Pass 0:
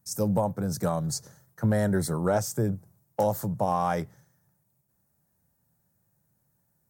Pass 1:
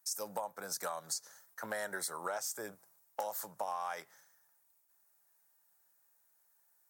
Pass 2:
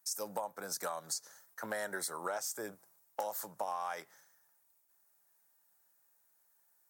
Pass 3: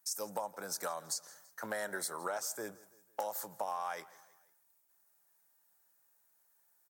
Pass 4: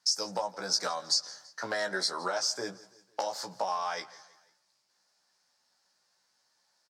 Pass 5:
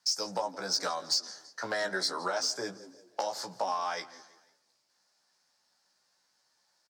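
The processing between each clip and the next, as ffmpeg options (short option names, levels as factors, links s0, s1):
-af "highpass=1000,acompressor=threshold=0.0126:ratio=6,volume=1.41"
-af "equalizer=f=300:t=o:w=1.1:g=3.5"
-af "aecho=1:1:166|332|498:0.0891|0.0428|0.0205"
-filter_complex "[0:a]lowpass=f=4900:t=q:w=4.7,asplit=2[s0][s1];[s1]adelay=16,volume=0.631[s2];[s0][s2]amix=inputs=2:normalize=0,volume=1.58"
-filter_complex "[0:a]acrossover=split=310|5200[s0][s1][s2];[s0]asplit=6[s3][s4][s5][s6][s7][s8];[s4]adelay=177,afreqshift=81,volume=0.596[s9];[s5]adelay=354,afreqshift=162,volume=0.221[s10];[s6]adelay=531,afreqshift=243,volume=0.0813[s11];[s7]adelay=708,afreqshift=324,volume=0.0302[s12];[s8]adelay=885,afreqshift=405,volume=0.0112[s13];[s3][s9][s10][s11][s12][s13]amix=inputs=6:normalize=0[s14];[s2]asoftclip=type=tanh:threshold=0.0335[s15];[s14][s1][s15]amix=inputs=3:normalize=0"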